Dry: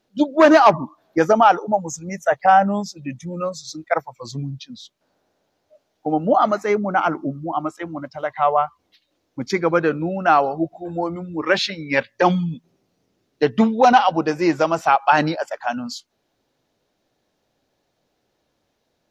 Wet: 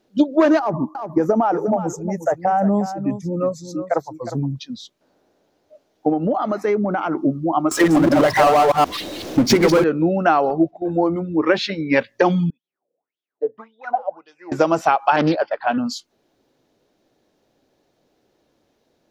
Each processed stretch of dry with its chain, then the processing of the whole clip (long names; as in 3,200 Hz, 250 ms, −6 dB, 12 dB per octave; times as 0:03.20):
0:00.59–0:04.56: parametric band 3,200 Hz −15 dB 2 octaves + downward compressor 10 to 1, threshold −17 dBFS + single-tap delay 359 ms −11.5 dB
0:06.09–0:07.18: parametric band 7,000 Hz −8 dB 0.37 octaves + downward compressor, threshold −22 dBFS
0:07.71–0:09.84: delay that plays each chunk backwards 126 ms, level −1 dB + power curve on the samples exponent 0.5
0:10.50–0:11.96: noise gate −39 dBFS, range −8 dB + high-shelf EQ 5,900 Hz −11 dB
0:12.50–0:14.52: parametric band 3,000 Hz −8 dB 0.95 octaves + LFO wah 1.8 Hz 480–3,400 Hz, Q 13
0:15.16–0:15.78: Butterworth low-pass 4,700 Hz 72 dB per octave + notch filter 870 Hz, Q 21 + highs frequency-modulated by the lows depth 0.32 ms
whole clip: parametric band 340 Hz +6.5 dB 1.6 octaves; downward compressor 12 to 1, threshold −13 dBFS; level +2 dB